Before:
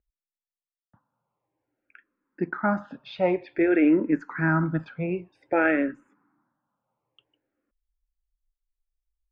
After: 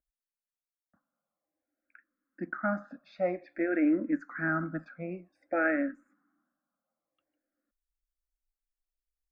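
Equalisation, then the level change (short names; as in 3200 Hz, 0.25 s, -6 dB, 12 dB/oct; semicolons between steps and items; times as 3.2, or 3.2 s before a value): low shelf 120 Hz -5 dB; fixed phaser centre 620 Hz, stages 8; -4.0 dB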